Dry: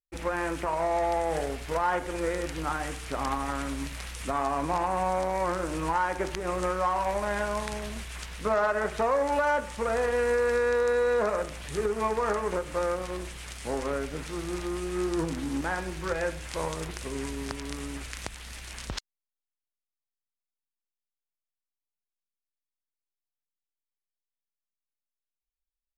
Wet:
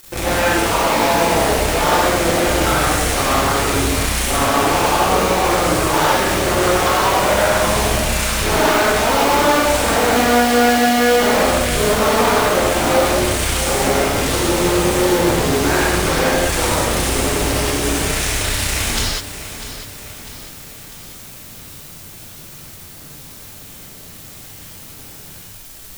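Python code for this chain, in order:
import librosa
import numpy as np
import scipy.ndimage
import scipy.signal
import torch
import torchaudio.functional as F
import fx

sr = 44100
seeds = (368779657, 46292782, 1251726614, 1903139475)

p1 = fx.cycle_switch(x, sr, every=2, mode='muted')
p2 = fx.high_shelf(p1, sr, hz=5400.0, db=6.0)
p3 = fx.power_curve(p2, sr, exponent=0.35)
p4 = p3 + fx.echo_feedback(p3, sr, ms=648, feedback_pct=51, wet_db=-12.5, dry=0)
p5 = fx.rev_gated(p4, sr, seeds[0], gate_ms=230, shape='flat', drr_db=-7.0)
y = F.gain(torch.from_numpy(p5), -1.0).numpy()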